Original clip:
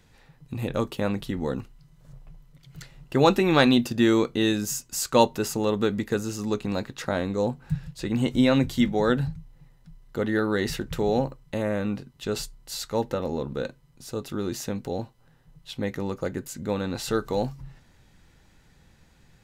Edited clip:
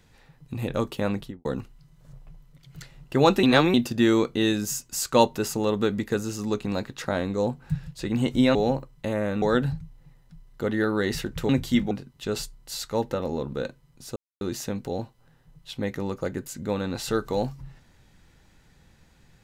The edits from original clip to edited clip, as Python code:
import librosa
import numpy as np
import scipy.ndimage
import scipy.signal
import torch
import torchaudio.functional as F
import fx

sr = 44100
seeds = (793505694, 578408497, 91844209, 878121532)

y = fx.studio_fade_out(x, sr, start_s=1.14, length_s=0.31)
y = fx.edit(y, sr, fx.reverse_span(start_s=3.43, length_s=0.31),
    fx.swap(start_s=8.55, length_s=0.42, other_s=11.04, other_length_s=0.87),
    fx.silence(start_s=14.16, length_s=0.25), tone=tone)